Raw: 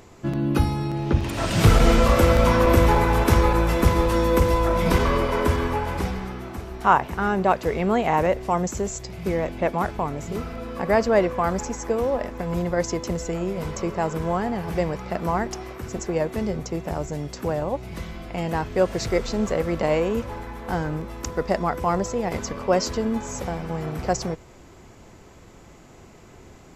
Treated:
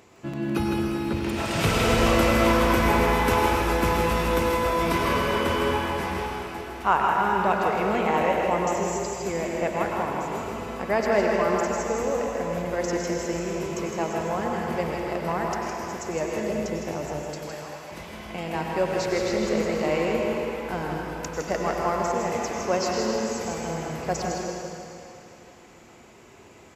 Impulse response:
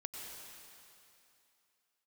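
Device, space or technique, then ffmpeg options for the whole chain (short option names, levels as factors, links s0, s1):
PA in a hall: -filter_complex "[0:a]asettb=1/sr,asplit=3[s0][s1][s2];[s0]atrim=end=17.194[s3];[s1]atrim=start=17.19:end=17.91,asetpts=PTS-STARTPTS,afade=t=in:d=0.004:c=qsin,afade=t=out:st=0.716:d=0.004:c=qsin,highpass=1300[s4];[s2]atrim=start=17.906[s5];[s3][s4]acrossfade=d=0.004:c1=hsin:c2=qsin[s6];[s6][s5]acrossfade=d=0.004:c1=qsin:c2=hsin,highpass=f=180:p=1,equalizer=f=2500:t=o:w=0.52:g=4,aecho=1:1:160:0.501[s7];[1:a]atrim=start_sample=2205[s8];[s7][s8]afir=irnorm=-1:irlink=0"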